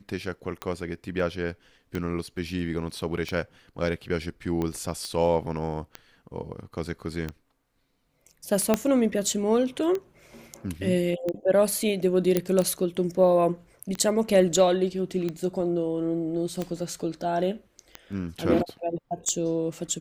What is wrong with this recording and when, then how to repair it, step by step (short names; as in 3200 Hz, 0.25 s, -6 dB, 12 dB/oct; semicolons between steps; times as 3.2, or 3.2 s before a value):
tick 45 rpm -17 dBFS
5.05 pop -21 dBFS
8.74 pop -7 dBFS
12.37 pop -8 dBFS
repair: de-click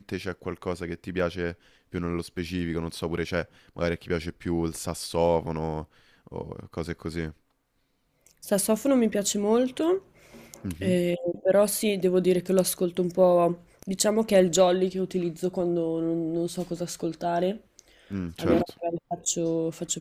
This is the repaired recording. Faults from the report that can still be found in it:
8.74 pop